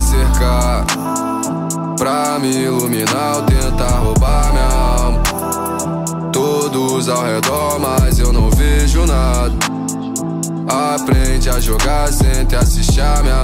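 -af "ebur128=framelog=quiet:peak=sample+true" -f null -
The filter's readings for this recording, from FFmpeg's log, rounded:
Integrated loudness:
  I:         -15.4 LUFS
  Threshold: -25.4 LUFS
Loudness range:
  LRA:         1.7 LU
  Threshold: -35.5 LUFS
  LRA low:   -16.2 LUFS
  LRA high:  -14.5 LUFS
Sample peak:
  Peak:       -3.5 dBFS
True peak:
  Peak:       -3.5 dBFS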